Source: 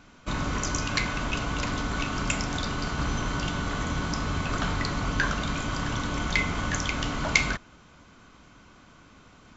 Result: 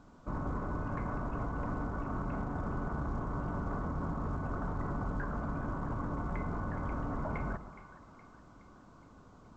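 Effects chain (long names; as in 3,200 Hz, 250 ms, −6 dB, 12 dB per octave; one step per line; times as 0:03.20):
low-pass filter 1,200 Hz 24 dB per octave
brickwall limiter −25.5 dBFS, peak gain reduction 8.5 dB
echo with a time of its own for lows and highs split 860 Hz, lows 134 ms, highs 418 ms, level −13 dB
level −2.5 dB
A-law companding 128 kbit/s 16,000 Hz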